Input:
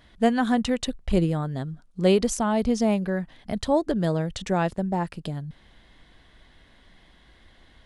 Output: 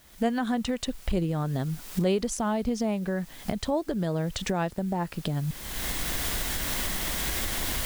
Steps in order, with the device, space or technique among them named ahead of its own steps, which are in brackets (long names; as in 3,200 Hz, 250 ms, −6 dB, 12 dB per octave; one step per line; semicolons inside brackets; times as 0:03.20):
cheap recorder with automatic gain (white noise bed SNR 28 dB; camcorder AGC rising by 37 dB per second)
level −6 dB